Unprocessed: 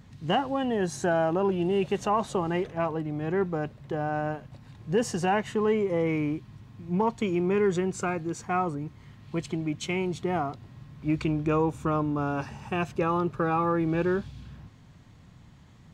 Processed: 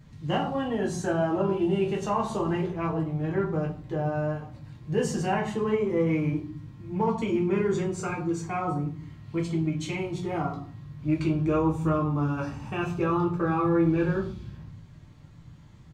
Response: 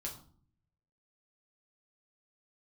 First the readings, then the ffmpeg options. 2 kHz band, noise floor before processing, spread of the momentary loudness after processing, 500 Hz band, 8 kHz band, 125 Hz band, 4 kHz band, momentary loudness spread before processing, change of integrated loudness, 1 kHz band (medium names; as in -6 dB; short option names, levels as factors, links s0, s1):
-2.0 dB, -53 dBFS, 10 LU, -0.5 dB, -1.0 dB, +3.5 dB, -2.5 dB, 10 LU, +0.5 dB, -2.0 dB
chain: -filter_complex "[0:a]asplit=2[s0][s1];[s1]adelay=18,volume=0.237[s2];[s0][s2]amix=inputs=2:normalize=0[s3];[1:a]atrim=start_sample=2205[s4];[s3][s4]afir=irnorm=-1:irlink=0"